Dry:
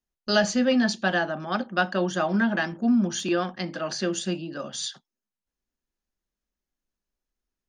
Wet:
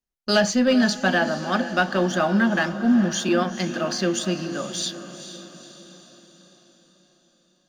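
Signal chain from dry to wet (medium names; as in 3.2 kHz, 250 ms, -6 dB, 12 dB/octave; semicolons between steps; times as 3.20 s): waveshaping leveller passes 1; echo that smears into a reverb 458 ms, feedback 53%, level -11.5 dB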